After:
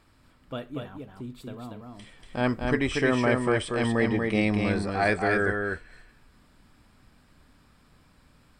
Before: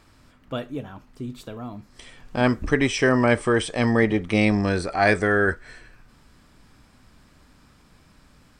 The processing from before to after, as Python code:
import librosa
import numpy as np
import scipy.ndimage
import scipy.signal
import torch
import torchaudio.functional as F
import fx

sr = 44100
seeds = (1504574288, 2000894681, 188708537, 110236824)

p1 = fx.peak_eq(x, sr, hz=6100.0, db=-7.5, octaves=0.33)
p2 = p1 + fx.echo_single(p1, sr, ms=237, db=-4.0, dry=0)
y = p2 * 10.0 ** (-5.5 / 20.0)